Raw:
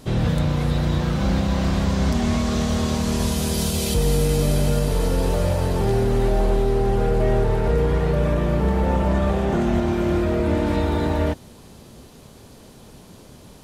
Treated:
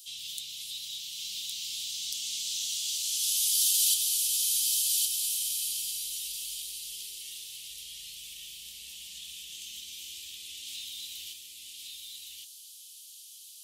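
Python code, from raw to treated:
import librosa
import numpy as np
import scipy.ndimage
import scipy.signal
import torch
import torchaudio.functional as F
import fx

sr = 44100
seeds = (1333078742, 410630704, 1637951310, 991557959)

y = scipy.signal.sosfilt(scipy.signal.ellip(4, 1.0, 50, 3000.0, 'highpass', fs=sr, output='sos'), x)
y = fx.high_shelf(y, sr, hz=8900.0, db=10.5)
y = y + 10.0 ** (-3.5 / 20.0) * np.pad(y, (int(1113 * sr / 1000.0), 0))[:len(y)]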